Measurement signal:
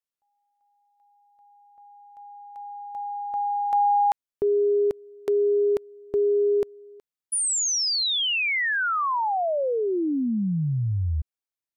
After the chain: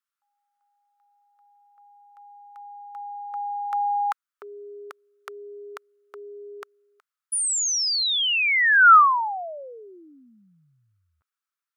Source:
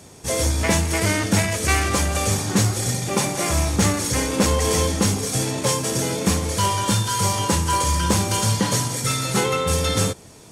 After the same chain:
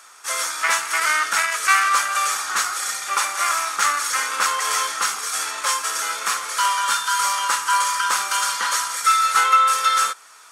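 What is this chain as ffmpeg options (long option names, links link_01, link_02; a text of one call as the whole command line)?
ffmpeg -i in.wav -af "highpass=frequency=1300:width_type=q:width=5.3" out.wav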